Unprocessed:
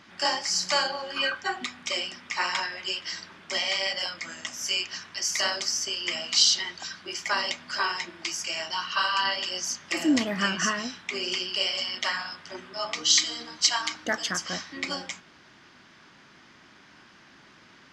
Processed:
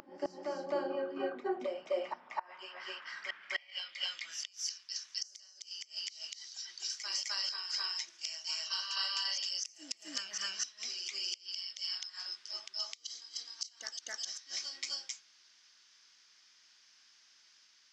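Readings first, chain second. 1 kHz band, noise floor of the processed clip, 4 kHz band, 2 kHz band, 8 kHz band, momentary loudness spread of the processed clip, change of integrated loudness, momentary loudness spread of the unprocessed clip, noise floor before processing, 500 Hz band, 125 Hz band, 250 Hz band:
−14.5 dB, −65 dBFS, −10.5 dB, −15.5 dB, −12.0 dB, 9 LU, −11.0 dB, 11 LU, −55 dBFS, −5.0 dB, below −20 dB, −15.5 dB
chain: dynamic equaliser 470 Hz, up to +6 dB, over −44 dBFS, Q 0.77
band-pass filter sweep 340 Hz → 5,700 Hz, 0:01.36–0:04.92
gate with flip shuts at −23 dBFS, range −28 dB
backwards echo 258 ms −4 dB

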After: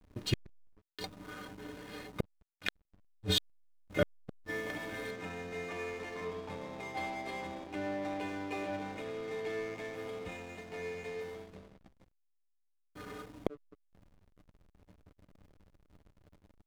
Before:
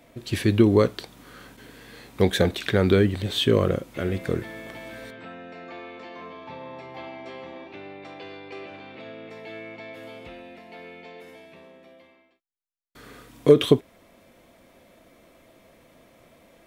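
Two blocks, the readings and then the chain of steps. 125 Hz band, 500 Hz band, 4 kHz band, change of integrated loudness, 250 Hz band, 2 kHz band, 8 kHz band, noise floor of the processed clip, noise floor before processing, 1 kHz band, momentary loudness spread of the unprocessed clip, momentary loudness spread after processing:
−16.0 dB, −15.0 dB, −8.0 dB, −17.5 dB, −16.0 dB, −6.5 dB, −6.5 dB, −75 dBFS, −58 dBFS, −6.0 dB, 22 LU, 13 LU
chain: stiff-string resonator 89 Hz, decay 0.26 s, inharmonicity 0.03
gate with flip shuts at −25 dBFS, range −40 dB
slack as between gear wheels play −51 dBFS
level +10.5 dB

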